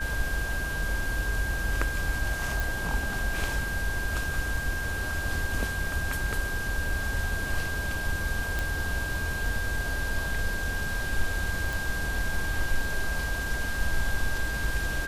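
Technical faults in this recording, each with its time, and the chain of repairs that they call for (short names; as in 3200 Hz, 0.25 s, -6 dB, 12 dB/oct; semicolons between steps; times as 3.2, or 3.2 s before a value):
tone 1600 Hz -32 dBFS
2.6 pop
8.59 pop
11.73 pop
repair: de-click; notch 1600 Hz, Q 30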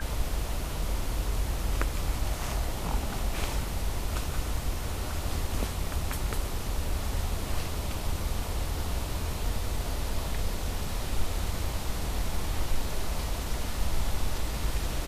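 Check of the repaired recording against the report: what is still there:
none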